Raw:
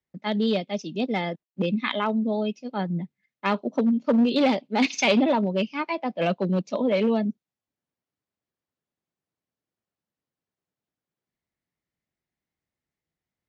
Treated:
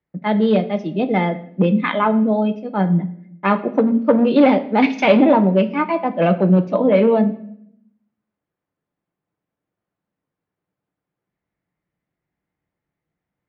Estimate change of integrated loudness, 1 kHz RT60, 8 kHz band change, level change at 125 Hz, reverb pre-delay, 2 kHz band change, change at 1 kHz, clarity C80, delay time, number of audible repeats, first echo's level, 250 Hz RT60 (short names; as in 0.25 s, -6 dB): +8.0 dB, 0.60 s, n/a, +10.5 dB, 6 ms, +5.0 dB, +8.5 dB, 17.5 dB, none, none, none, 1.1 s